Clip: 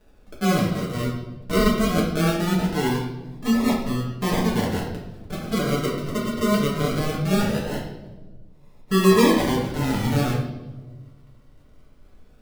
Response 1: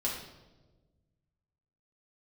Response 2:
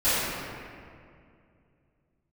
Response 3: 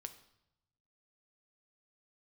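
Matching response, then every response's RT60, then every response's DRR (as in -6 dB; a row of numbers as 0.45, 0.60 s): 1; not exponential, 2.3 s, 0.85 s; -5.0, -19.5, 8.0 dB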